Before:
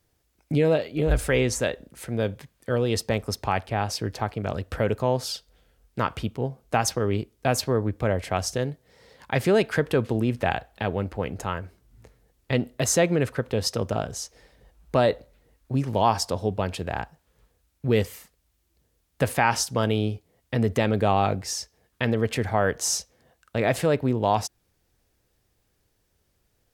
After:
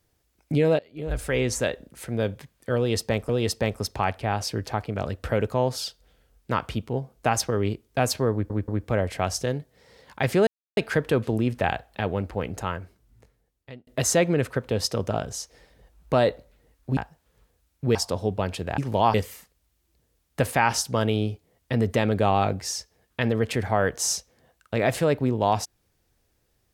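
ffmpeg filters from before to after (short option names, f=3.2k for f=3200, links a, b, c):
-filter_complex "[0:a]asplit=11[a][b][c][d][e][f][g][h][i][j][k];[a]atrim=end=0.79,asetpts=PTS-STARTPTS,afade=t=out:st=0.786:d=0.004:c=hsin:silence=0.0749894[l];[b]atrim=start=0.79:end=3.292,asetpts=PTS-STARTPTS,afade=t=in:d=0.79:silence=0.0749894[m];[c]atrim=start=2.768:end=7.982[n];[d]atrim=start=7.798:end=7.982[o];[e]atrim=start=7.798:end=9.59,asetpts=PTS-STARTPTS,afade=t=out:st=1.788:d=0.004:c=hsin,apad=pad_dur=0.3[p];[f]atrim=start=9.59:end=12.69,asetpts=PTS-STARTPTS,afade=t=in:d=0.004:c=hsin,afade=t=out:st=1.92:d=1.18[q];[g]atrim=start=12.69:end=15.792,asetpts=PTS-STARTPTS,afade=t=in:d=0.004:c=hsin[r];[h]atrim=start=16.978:end=17.962[s];[i]atrim=start=16.148:end=16.982[t];[j]atrim=start=15.788:end=16.152[u];[k]atrim=start=17.958[v];[l][m]concat=n=2:v=0:a=1[w];[w][n]acrossfade=d=0.004:c1=hsin:c2=hsin[x];[x][o]acrossfade=d=0.004:c1=hsin:c2=hsin[y];[p][q][r]concat=n=3:v=0:a=1[z];[y][z]acrossfade=d=0.004:c1=hsin:c2=hsin[aa];[aa][s]acrossfade=d=0.004:c1=hsin:c2=hsin[ab];[ab][t]acrossfade=d=0.004:c1=hsin:c2=hsin[ac];[ac][u]acrossfade=d=0.004:c1=hsin:c2=hsin[ad];[ad][v]acrossfade=d=0.004:c1=hsin:c2=hsin"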